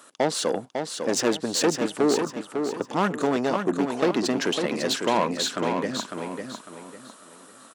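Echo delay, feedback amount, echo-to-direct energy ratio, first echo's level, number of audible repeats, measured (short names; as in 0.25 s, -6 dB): 0.551 s, 32%, -5.5 dB, -6.0 dB, 3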